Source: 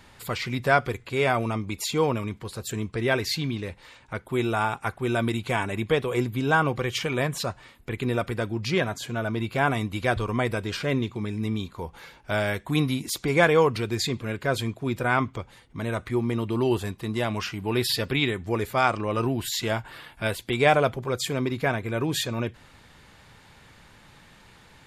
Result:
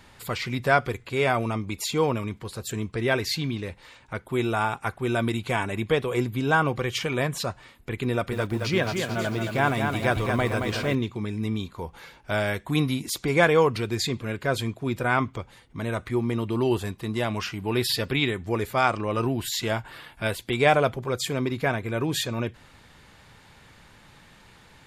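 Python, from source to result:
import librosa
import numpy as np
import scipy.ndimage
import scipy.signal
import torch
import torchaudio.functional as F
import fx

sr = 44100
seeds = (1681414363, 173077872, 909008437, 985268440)

y = fx.echo_crushed(x, sr, ms=222, feedback_pct=55, bits=8, wet_db=-5.0, at=(8.1, 10.95))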